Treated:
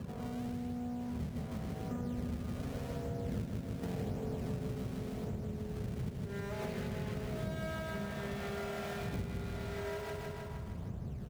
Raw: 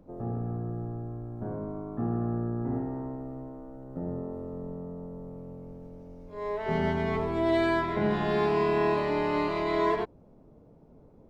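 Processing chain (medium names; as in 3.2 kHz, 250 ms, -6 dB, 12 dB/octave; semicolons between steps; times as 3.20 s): comb filter that takes the minimum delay 4.3 ms; wind noise 190 Hz -31 dBFS; Doppler pass-by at 4.11 s, 13 m/s, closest 8.8 m; wind noise 100 Hz -52 dBFS; in parallel at -6.5 dB: decimation with a swept rate 29×, swing 160% 0.89 Hz; on the sum: high-pass 74 Hz; peaking EQ 300 Hz -13.5 dB 0.26 oct; on a send: feedback delay 156 ms, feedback 54%, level -4 dB; on the sum: dynamic bell 1 kHz, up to -6 dB, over -59 dBFS, Q 1.4; compression 6:1, threshold -48 dBFS, peak gain reduction 22.5 dB; trim +11.5 dB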